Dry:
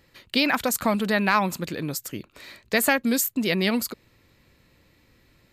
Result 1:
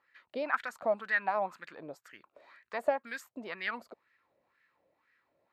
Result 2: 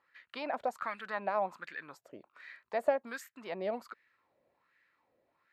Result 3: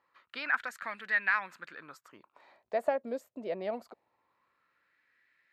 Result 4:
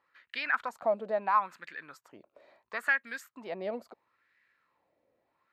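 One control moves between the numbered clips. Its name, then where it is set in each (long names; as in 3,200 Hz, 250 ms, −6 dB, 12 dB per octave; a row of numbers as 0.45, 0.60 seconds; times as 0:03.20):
LFO wah, speed: 2, 1.3, 0.23, 0.74 Hertz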